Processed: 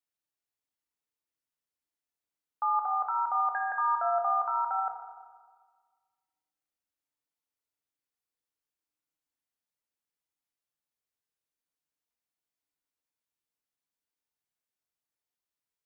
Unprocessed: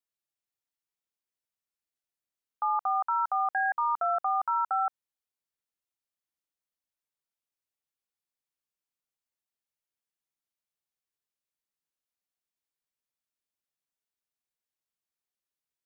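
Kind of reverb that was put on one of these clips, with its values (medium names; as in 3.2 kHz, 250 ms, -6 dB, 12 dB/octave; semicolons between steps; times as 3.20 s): FDN reverb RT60 1.6 s, low-frequency decay 1×, high-frequency decay 0.25×, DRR 2 dB; trim -2.5 dB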